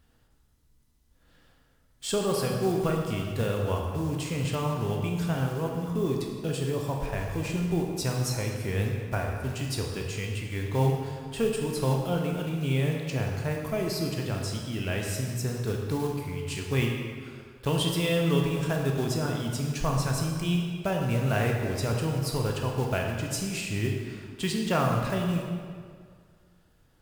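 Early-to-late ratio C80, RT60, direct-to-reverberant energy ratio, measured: 3.5 dB, 2.0 s, 0.5 dB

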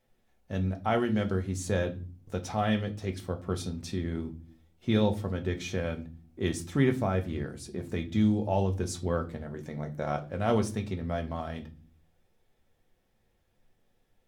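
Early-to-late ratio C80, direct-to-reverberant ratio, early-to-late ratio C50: 21.5 dB, 4.5 dB, 16.0 dB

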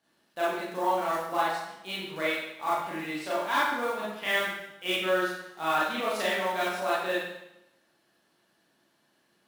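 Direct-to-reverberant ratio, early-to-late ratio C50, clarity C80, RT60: −8.0 dB, 0.5 dB, 3.0 dB, 0.85 s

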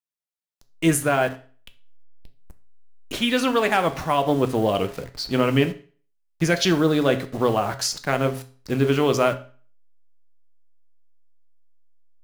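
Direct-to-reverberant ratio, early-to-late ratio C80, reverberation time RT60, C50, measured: 8.0 dB, 19.5 dB, 0.40 s, 15.0 dB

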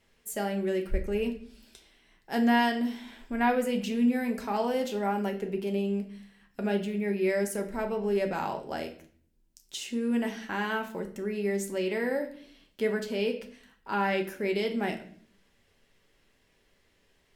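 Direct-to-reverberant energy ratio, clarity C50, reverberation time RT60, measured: 3.5 dB, 11.5 dB, 0.50 s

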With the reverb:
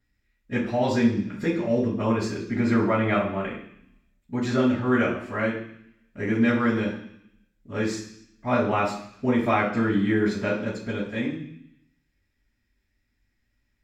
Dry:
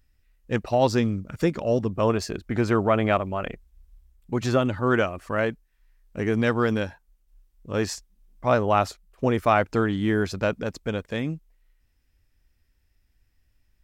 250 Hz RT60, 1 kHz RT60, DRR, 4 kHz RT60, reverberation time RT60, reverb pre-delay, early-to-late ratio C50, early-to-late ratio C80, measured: 0.95 s, 0.70 s, −14.5 dB, 0.85 s, 0.70 s, 3 ms, 6.0 dB, 9.5 dB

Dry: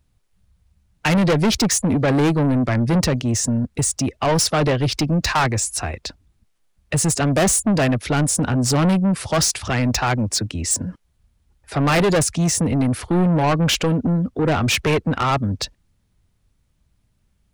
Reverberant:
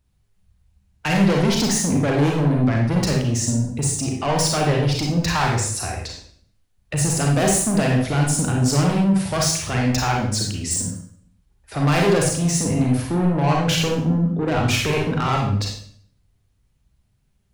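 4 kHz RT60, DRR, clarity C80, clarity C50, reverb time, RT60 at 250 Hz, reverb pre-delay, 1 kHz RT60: 0.50 s, −1.0 dB, 7.0 dB, 2.0 dB, 0.55 s, 0.75 s, 32 ms, 0.55 s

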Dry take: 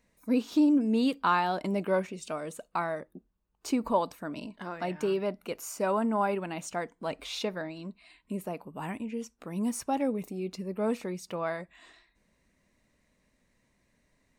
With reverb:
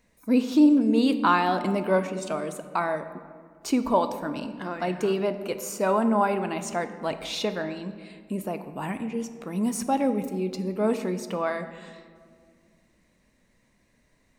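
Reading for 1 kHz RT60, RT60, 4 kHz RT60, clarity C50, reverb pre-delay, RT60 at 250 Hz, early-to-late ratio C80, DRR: 1.7 s, 2.0 s, 1.1 s, 11.0 dB, 3 ms, 2.8 s, 12.5 dB, 9.0 dB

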